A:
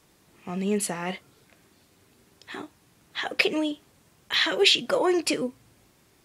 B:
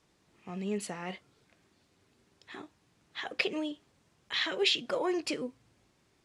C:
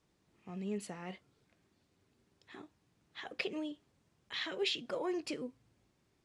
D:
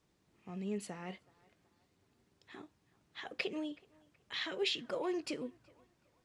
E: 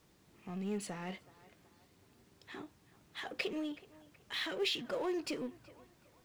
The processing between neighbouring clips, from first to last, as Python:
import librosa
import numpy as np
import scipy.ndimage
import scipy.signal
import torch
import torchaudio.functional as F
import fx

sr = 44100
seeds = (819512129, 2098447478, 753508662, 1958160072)

y1 = scipy.signal.sosfilt(scipy.signal.butter(2, 7500.0, 'lowpass', fs=sr, output='sos'), x)
y1 = F.gain(torch.from_numpy(y1), -8.0).numpy()
y2 = fx.low_shelf(y1, sr, hz=430.0, db=5.0)
y2 = F.gain(torch.from_numpy(y2), -8.0).numpy()
y3 = fx.echo_banded(y2, sr, ms=374, feedback_pct=47, hz=1100.0, wet_db=-21.5)
y4 = fx.law_mismatch(y3, sr, coded='mu')
y4 = F.gain(torch.from_numpy(y4), -1.5).numpy()